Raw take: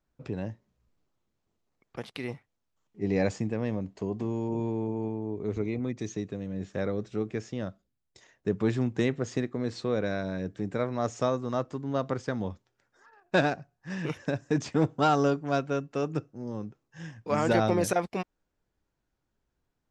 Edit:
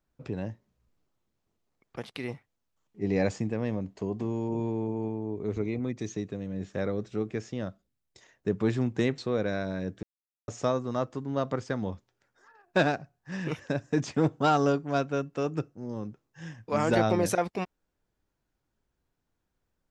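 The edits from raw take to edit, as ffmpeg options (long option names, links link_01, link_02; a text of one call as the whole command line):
ffmpeg -i in.wav -filter_complex "[0:a]asplit=4[link_01][link_02][link_03][link_04];[link_01]atrim=end=9.182[link_05];[link_02]atrim=start=9.758:end=10.61,asetpts=PTS-STARTPTS,afade=type=out:start_time=0.848:duration=0.004:curve=hsin[link_06];[link_03]atrim=start=10.61:end=11.06,asetpts=PTS-STARTPTS,volume=0[link_07];[link_04]atrim=start=11.06,asetpts=PTS-STARTPTS,afade=type=in:duration=0.004:curve=hsin[link_08];[link_06][link_07][link_08]concat=n=3:v=0:a=1[link_09];[link_05][link_09]acrossfade=duration=0.004:curve1=hsin:curve2=hsin" out.wav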